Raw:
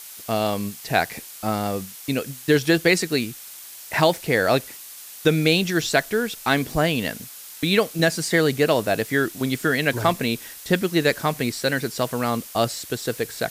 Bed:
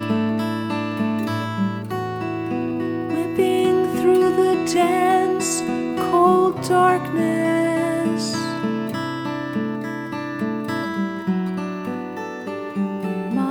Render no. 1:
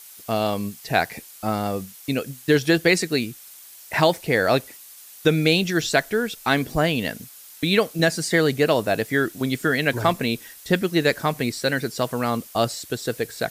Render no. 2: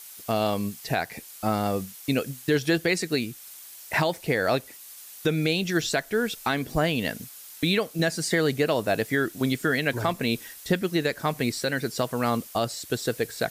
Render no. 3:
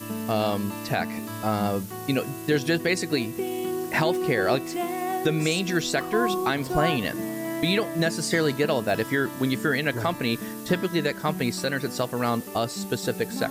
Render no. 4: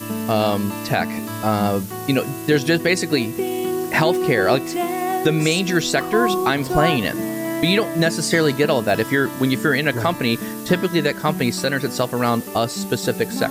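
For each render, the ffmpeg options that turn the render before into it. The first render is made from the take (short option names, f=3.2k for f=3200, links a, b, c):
-af "afftdn=nr=6:nf=-41"
-af "alimiter=limit=-12.5dB:level=0:latency=1:release=334"
-filter_complex "[1:a]volume=-11.5dB[a];[0:a][a]amix=inputs=2:normalize=0"
-af "volume=6dB"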